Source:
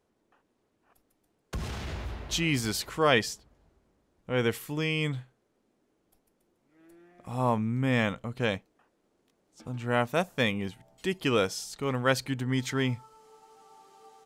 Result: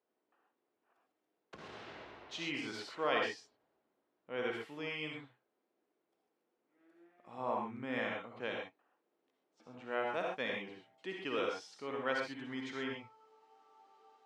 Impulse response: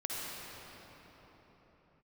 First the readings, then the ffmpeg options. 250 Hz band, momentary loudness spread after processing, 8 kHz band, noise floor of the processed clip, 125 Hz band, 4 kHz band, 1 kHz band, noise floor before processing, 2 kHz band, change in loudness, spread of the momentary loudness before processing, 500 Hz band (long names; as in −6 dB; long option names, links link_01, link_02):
−13.0 dB, 15 LU, below −15 dB, −85 dBFS, −23.5 dB, −10.5 dB, −7.5 dB, −74 dBFS, −8.0 dB, −10.0 dB, 12 LU, −8.5 dB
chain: -filter_complex "[0:a]highpass=310,lowpass=3600[link_01];[1:a]atrim=start_sample=2205,atrim=end_sample=6174[link_02];[link_01][link_02]afir=irnorm=-1:irlink=0,volume=-8dB"